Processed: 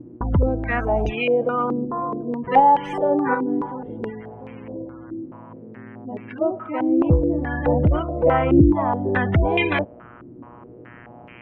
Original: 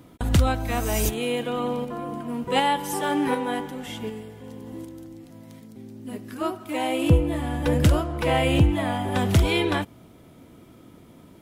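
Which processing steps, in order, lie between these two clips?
tracing distortion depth 0.071 ms; buzz 120 Hz, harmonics 26, -50 dBFS -3 dB/oct; spectral gate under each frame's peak -25 dB strong; added harmonics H 2 -22 dB, 5 -34 dB, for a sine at -6.5 dBFS; stepped low-pass 4.7 Hz 330–2400 Hz

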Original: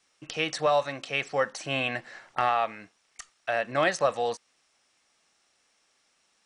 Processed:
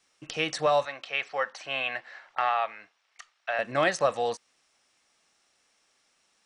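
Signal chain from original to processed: 0.85–3.59 three-band isolator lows -16 dB, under 540 Hz, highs -16 dB, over 4900 Hz

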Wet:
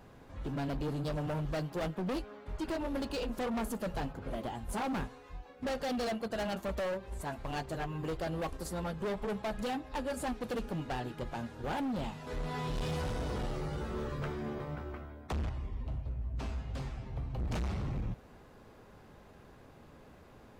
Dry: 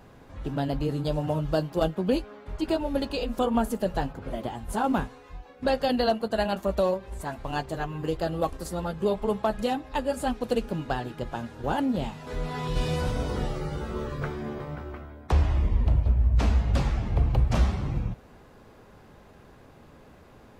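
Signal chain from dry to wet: 15.49–17.4 resonator 130 Hz, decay 0.31 s, harmonics all, mix 80%; hard clip -28 dBFS, distortion -6 dB; gain -4 dB

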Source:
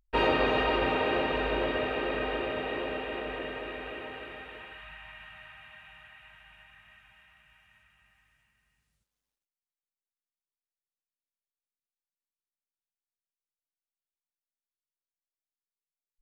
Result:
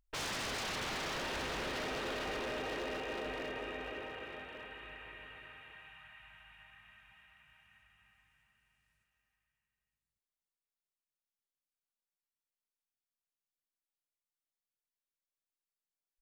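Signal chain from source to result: wavefolder -30 dBFS; echo 1.15 s -13.5 dB; gain -4 dB

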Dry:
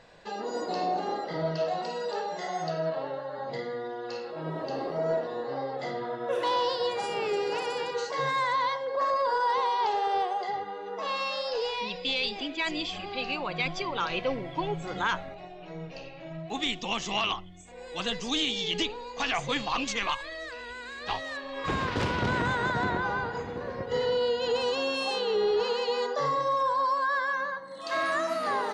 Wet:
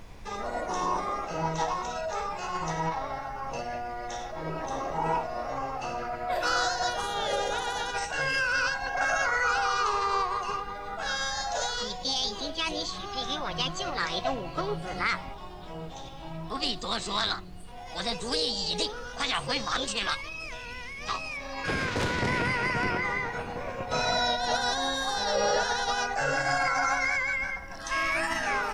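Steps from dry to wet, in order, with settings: formant shift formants +5 st; added noise brown -44 dBFS

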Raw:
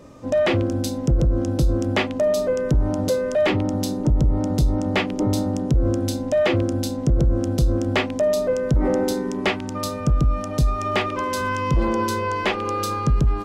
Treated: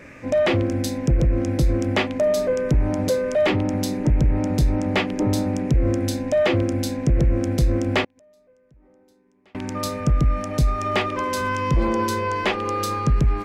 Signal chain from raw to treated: band noise 1500–2500 Hz -48 dBFS; 8.04–9.55 flipped gate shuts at -18 dBFS, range -36 dB

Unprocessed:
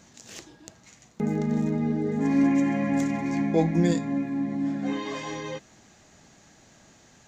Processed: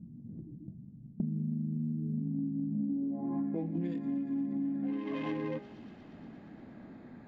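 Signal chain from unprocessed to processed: Wiener smoothing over 15 samples; bell 250 Hz +13.5 dB 1.3 oct; de-hum 68.15 Hz, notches 36; low-pass sweep 150 Hz -> 2800 Hz, 2.7–3.68; 1.27–2.18 short-mantissa float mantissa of 8-bit; 3.27–3.8 bell 2000 Hz -1 dB -> -13 dB 1.2 oct; thin delay 0.118 s, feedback 84%, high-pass 4600 Hz, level -13.5 dB; compressor 16:1, threshold -31 dBFS, peak gain reduction 26 dB

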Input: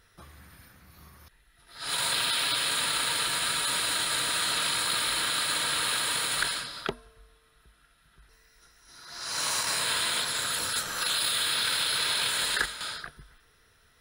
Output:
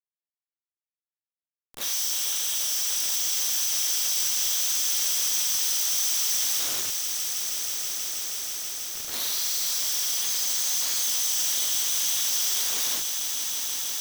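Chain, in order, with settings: nonlinear frequency compression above 2200 Hz 1.5:1; inverse Chebyshev band-stop 260–1100 Hz, stop band 70 dB; tone controls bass -3 dB, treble +5 dB; in parallel at -2.5 dB: compressor 6:1, threshold -38 dBFS, peak gain reduction 12 dB; on the sum: Schmitt trigger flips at -38 dBFS; RIAA curve recording; on a send: swelling echo 0.161 s, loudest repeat 8, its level -13 dB; on the sum: Doppler distortion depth 0.13 ms; gain -5.5 dB

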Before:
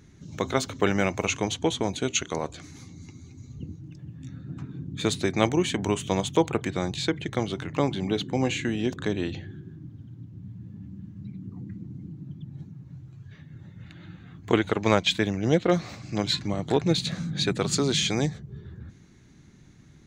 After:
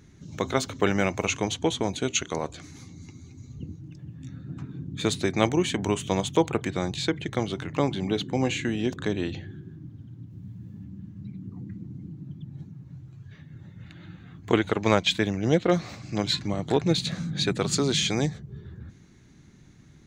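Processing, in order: 10.3–10.84 high shelf 5300 Hz +7 dB

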